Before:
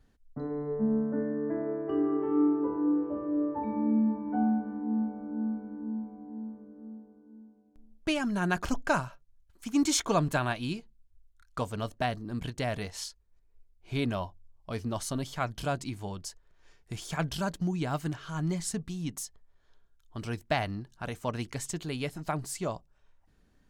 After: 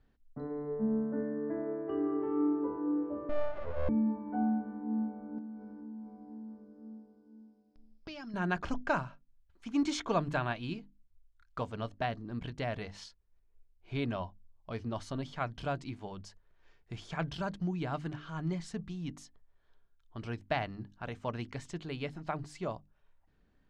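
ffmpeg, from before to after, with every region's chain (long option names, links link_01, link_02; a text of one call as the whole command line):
ffmpeg -i in.wav -filter_complex "[0:a]asettb=1/sr,asplit=3[link_01][link_02][link_03];[link_01]atrim=end=3.294[link_04];[link_02]atrim=start=3.29:end=3.89,asetpts=PTS-STARTPTS,afade=type=in:duration=0.004:curve=qsin,afade=type=out:start_time=0.596:duration=0.004:curve=qsin,asuperstop=centerf=720:order=20:qfactor=2.1,aecho=1:1:3.3:0.74,atrim=end_sample=26460,aeval=exprs='abs(val(0))':channel_layout=same[link_05];[link_03]atrim=start=3.886[link_06];[link_04][link_05]acrossfade=duration=0.004:curve1=hsin:curve2=qsin[link_07];[link_07][link_06]acrossfade=duration=0.004:curve1=qsin:curve2=hsin,asettb=1/sr,asplit=3[link_08][link_09][link_10];[link_08]atrim=end=5.384[link_11];[link_09]atrim=start=5.38:end=8.34,asetpts=PTS-STARTPTS,afade=type=in:duration=0.004:curve=qsin,afade=type=out:start_time=2.956:duration=0.004:curve=qsin,acompressor=threshold=-38dB:ratio=6:attack=3.2:release=140:knee=1:detection=peak,lowpass=frequency=5100:width_type=q:width=9.2[link_12];[link_10]atrim=start=8.336[link_13];[link_11][link_12]acrossfade=duration=0.004:curve1=hsin:curve2=qsin[link_14];[link_14][link_13]acrossfade=duration=0.004:curve1=qsin:curve2=hsin,lowpass=3700,bandreject=frequency=50:width_type=h:width=6,bandreject=frequency=100:width_type=h:width=6,bandreject=frequency=150:width_type=h:width=6,bandreject=frequency=200:width_type=h:width=6,bandreject=frequency=250:width_type=h:width=6,bandreject=frequency=300:width_type=h:width=6,volume=-3.5dB" out.wav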